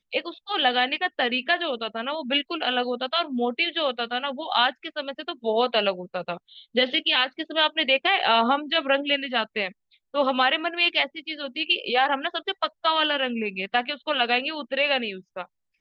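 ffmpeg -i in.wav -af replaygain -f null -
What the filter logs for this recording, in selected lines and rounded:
track_gain = +2.1 dB
track_peak = 0.306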